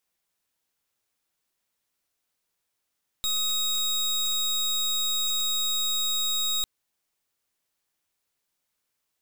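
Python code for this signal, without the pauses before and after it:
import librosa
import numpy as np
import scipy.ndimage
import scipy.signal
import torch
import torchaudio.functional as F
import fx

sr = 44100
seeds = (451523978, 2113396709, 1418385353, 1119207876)

y = fx.pulse(sr, length_s=3.4, hz=3780.0, level_db=-26.0, duty_pct=26)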